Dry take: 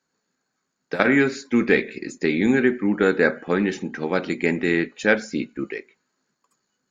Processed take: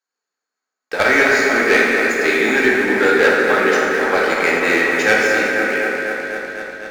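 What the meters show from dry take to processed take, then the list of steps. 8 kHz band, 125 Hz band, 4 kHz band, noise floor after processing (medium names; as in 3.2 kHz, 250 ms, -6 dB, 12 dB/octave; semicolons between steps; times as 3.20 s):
no reading, -5.0 dB, +11.0 dB, -84 dBFS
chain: high-pass 560 Hz 12 dB/octave; bucket-brigade echo 248 ms, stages 4096, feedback 76%, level -7 dB; waveshaping leveller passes 3; plate-style reverb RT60 2.7 s, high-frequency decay 0.6×, DRR -2.5 dB; trim -4 dB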